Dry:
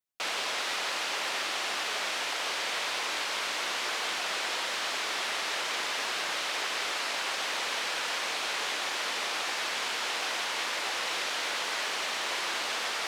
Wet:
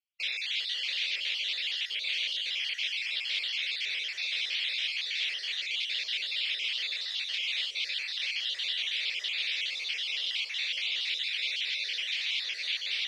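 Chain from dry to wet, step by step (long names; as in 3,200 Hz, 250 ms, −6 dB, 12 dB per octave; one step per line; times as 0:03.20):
time-frequency cells dropped at random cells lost 38%
drawn EQ curve 110 Hz 0 dB, 250 Hz −29 dB, 370 Hz −12 dB, 560 Hz −11 dB, 880 Hz −24 dB, 1,400 Hz −16 dB, 2,200 Hz +10 dB, 3,600 Hz +14 dB, 7,100 Hz −6 dB, 11,000 Hz −12 dB
echo with a time of its own for lows and highs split 1,300 Hz, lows 768 ms, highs 323 ms, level −15.5 dB
level −7 dB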